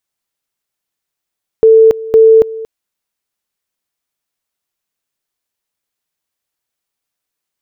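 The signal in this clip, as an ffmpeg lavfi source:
-f lavfi -i "aevalsrc='pow(10,(-2-18.5*gte(mod(t,0.51),0.28))/20)*sin(2*PI*445*t)':d=1.02:s=44100"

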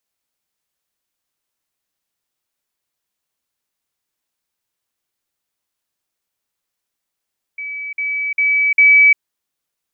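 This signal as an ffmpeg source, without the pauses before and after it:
-f lavfi -i "aevalsrc='pow(10,(-24+6*floor(t/0.4))/20)*sin(2*PI*2290*t)*clip(min(mod(t,0.4),0.35-mod(t,0.4))/0.005,0,1)':d=1.6:s=44100"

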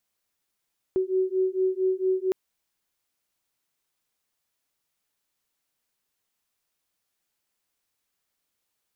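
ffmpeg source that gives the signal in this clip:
-f lavfi -i "aevalsrc='0.0562*(sin(2*PI*373*t)+sin(2*PI*377.4*t))':d=1.36:s=44100"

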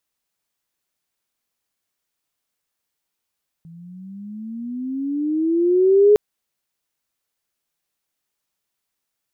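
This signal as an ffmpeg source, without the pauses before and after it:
-f lavfi -i "aevalsrc='pow(10,(-8+30.5*(t/2.51-1))/20)*sin(2*PI*163*2.51/(16.5*log(2)/12)*(exp(16.5*log(2)/12*t/2.51)-1))':d=2.51:s=44100"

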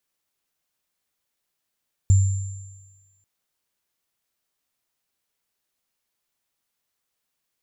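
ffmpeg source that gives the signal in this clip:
-f lavfi -i "aevalsrc='0.316*pow(10,-3*t/1.17)*sin(2*PI*96.2*t)+0.0376*pow(10,-3*t/1.86)*sin(2*PI*7270*t)':d=1.14:s=44100"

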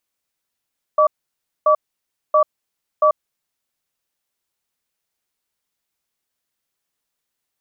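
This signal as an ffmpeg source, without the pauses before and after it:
-f lavfi -i "aevalsrc='0.224*(sin(2*PI*613*t)+sin(2*PI*1150*t))*clip(min(mod(t,0.68),0.09-mod(t,0.68))/0.005,0,1)':d=2.71:s=44100"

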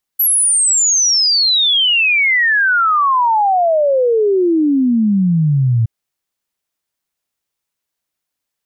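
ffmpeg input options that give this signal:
-f lavfi -i "aevalsrc='0.316*clip(min(t,5.67-t)/0.01,0,1)*sin(2*PI*12000*5.67/log(110/12000)*(exp(log(110/12000)*t/5.67)-1))':d=5.67:s=44100"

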